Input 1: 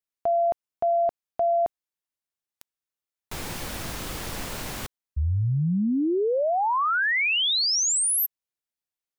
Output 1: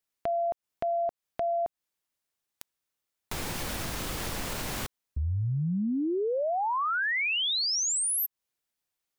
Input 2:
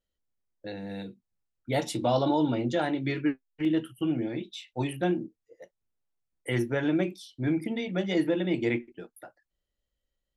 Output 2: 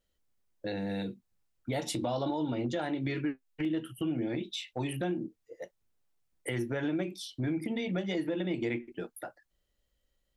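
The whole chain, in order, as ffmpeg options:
ffmpeg -i in.wav -af "acompressor=threshold=-34dB:ratio=5:attack=1.3:release=314:knee=6:detection=peak,volume=6dB" out.wav

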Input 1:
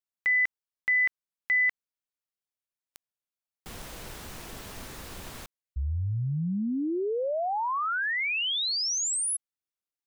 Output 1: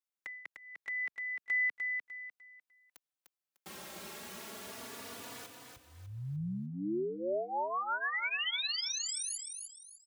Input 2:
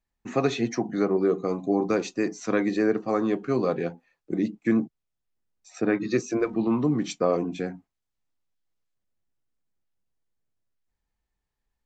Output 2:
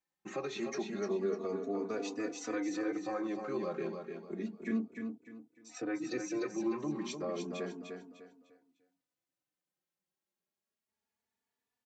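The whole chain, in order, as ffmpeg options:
ffmpeg -i in.wav -filter_complex "[0:a]acrossover=split=3800[link_01][link_02];[link_02]acompressor=threshold=-34dB:ratio=4:attack=1:release=60[link_03];[link_01][link_03]amix=inputs=2:normalize=0,highpass=210,acompressor=threshold=-34dB:ratio=2:attack=0.38:release=143:knee=6:detection=rms,aecho=1:1:300|600|900|1200:0.531|0.17|0.0544|0.0174,asplit=2[link_04][link_05];[link_05]adelay=3.4,afreqshift=0.31[link_06];[link_04][link_06]amix=inputs=2:normalize=1" out.wav

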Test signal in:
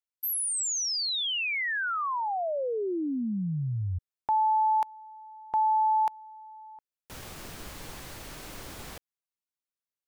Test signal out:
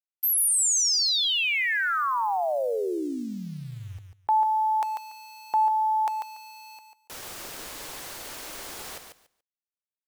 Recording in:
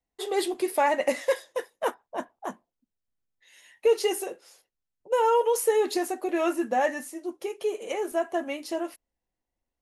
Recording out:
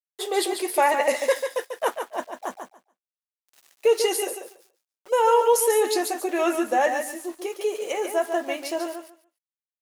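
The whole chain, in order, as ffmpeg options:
ffmpeg -i in.wav -filter_complex "[0:a]aeval=exprs='val(0)*gte(abs(val(0)),0.00422)':channel_layout=same,bass=frequency=250:gain=-13,treble=frequency=4000:gain=3,asplit=2[link_01][link_02];[link_02]aecho=0:1:143|286|429:0.447|0.0759|0.0129[link_03];[link_01][link_03]amix=inputs=2:normalize=0,volume=3.5dB" -ar 44100 -c:a aac -b:a 160k out.aac

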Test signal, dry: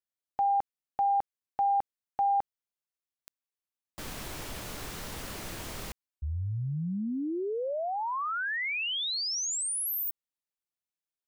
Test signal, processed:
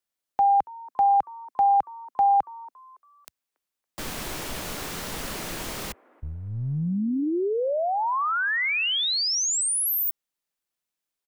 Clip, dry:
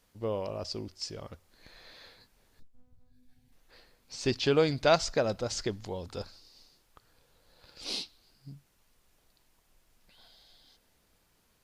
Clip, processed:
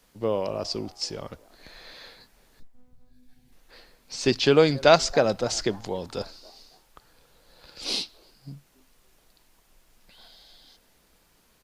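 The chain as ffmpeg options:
ffmpeg -i in.wav -filter_complex "[0:a]equalizer=frequency=90:width_type=o:width=0.55:gain=-9,acrossover=split=110|1800[link_01][link_02][link_03];[link_01]aeval=exprs='clip(val(0),-1,0.00251)':channel_layout=same[link_04];[link_02]asplit=4[link_05][link_06][link_07][link_08];[link_06]adelay=280,afreqshift=120,volume=-21.5dB[link_09];[link_07]adelay=560,afreqshift=240,volume=-30.1dB[link_10];[link_08]adelay=840,afreqshift=360,volume=-38.8dB[link_11];[link_05][link_09][link_10][link_11]amix=inputs=4:normalize=0[link_12];[link_04][link_12][link_03]amix=inputs=3:normalize=0,volume=7dB" out.wav

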